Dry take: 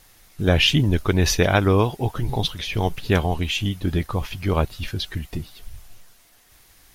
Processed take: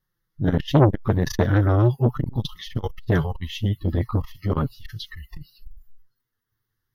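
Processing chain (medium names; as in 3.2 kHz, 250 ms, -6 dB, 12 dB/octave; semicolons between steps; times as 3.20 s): spectral noise reduction 25 dB; graphic EQ 125/500/2000/4000 Hz +11/+8/+4/-7 dB; flange 0.38 Hz, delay 5.3 ms, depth 4 ms, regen +23%; static phaser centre 2.4 kHz, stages 6; transformer saturation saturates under 600 Hz; trim +3.5 dB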